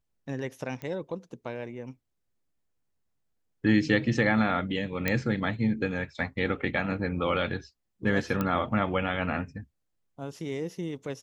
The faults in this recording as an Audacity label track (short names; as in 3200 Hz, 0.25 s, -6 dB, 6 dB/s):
0.820000	0.820000	pop -25 dBFS
5.080000	5.080000	pop -11 dBFS
8.410000	8.410000	pop -15 dBFS